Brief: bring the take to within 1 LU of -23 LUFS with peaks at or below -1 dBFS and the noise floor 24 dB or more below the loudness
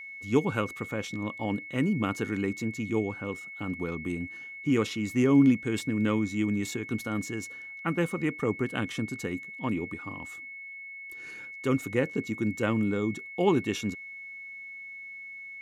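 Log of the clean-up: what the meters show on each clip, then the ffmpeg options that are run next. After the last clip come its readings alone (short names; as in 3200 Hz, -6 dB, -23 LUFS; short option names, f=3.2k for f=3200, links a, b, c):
steady tone 2200 Hz; tone level -40 dBFS; loudness -29.5 LUFS; peak -11.5 dBFS; loudness target -23.0 LUFS
-> -af "bandreject=f=2.2k:w=30"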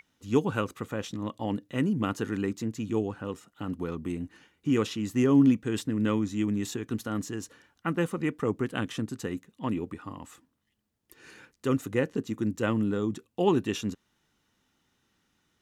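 steady tone none; loudness -29.5 LUFS; peak -11.5 dBFS; loudness target -23.0 LUFS
-> -af "volume=6.5dB"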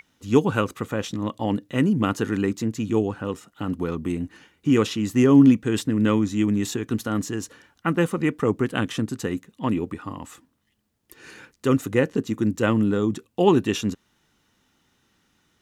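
loudness -23.0 LUFS; peak -5.0 dBFS; noise floor -70 dBFS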